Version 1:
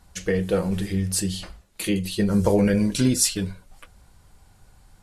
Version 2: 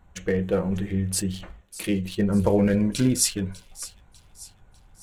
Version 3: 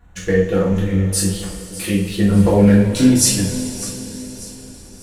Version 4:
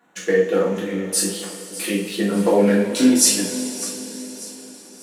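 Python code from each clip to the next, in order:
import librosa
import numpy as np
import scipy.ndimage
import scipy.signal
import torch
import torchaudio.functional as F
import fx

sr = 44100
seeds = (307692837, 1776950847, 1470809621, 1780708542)

y1 = fx.wiener(x, sr, points=9)
y1 = fx.echo_wet_highpass(y1, sr, ms=598, feedback_pct=46, hz=3500.0, wet_db=-14.0)
y1 = y1 * librosa.db_to_amplitude(-1.0)
y2 = fx.rev_double_slope(y1, sr, seeds[0], early_s=0.45, late_s=4.9, knee_db=-18, drr_db=-6.0)
y2 = y2 * librosa.db_to_amplitude(1.0)
y3 = scipy.signal.sosfilt(scipy.signal.butter(4, 240.0, 'highpass', fs=sr, output='sos'), y2)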